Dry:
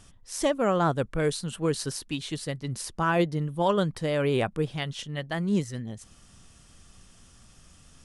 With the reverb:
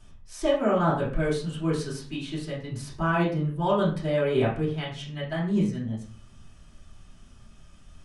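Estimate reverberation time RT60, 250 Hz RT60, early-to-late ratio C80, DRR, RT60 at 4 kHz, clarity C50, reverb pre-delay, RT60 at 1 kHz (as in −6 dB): 0.40 s, 0.55 s, 10.5 dB, −8.5 dB, 0.30 s, 6.0 dB, 3 ms, 0.40 s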